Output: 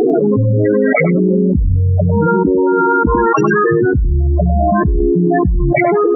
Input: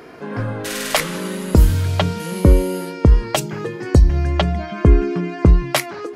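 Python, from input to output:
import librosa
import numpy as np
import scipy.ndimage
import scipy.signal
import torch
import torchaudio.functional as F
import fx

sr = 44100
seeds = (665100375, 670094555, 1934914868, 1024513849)

y = fx.wiener(x, sr, points=9)
y = fx.cabinet(y, sr, low_hz=250.0, low_slope=12, high_hz=6900.0, hz=(580.0, 1100.0, 1600.0, 3300.0), db=(-8, 10, 9, -10), at=(2.27, 3.71))
y = fx.spec_topn(y, sr, count=8)
y = y + 10.0 ** (-15.0 / 20.0) * np.pad(y, (int(99 * sr / 1000.0), 0))[:len(y)]
y = fx.env_flatten(y, sr, amount_pct=100)
y = y * librosa.db_to_amplitude(-5.5)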